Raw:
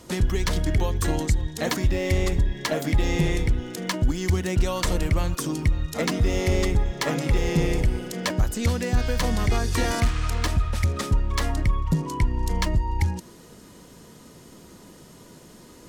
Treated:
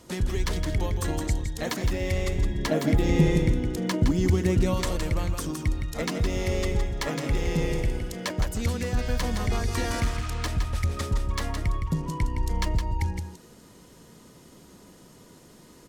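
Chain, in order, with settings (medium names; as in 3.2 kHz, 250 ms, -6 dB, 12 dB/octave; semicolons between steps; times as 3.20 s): 2.42–4.74 s: peaking EQ 230 Hz +9 dB 2.6 oct; delay 164 ms -7 dB; trim -4.5 dB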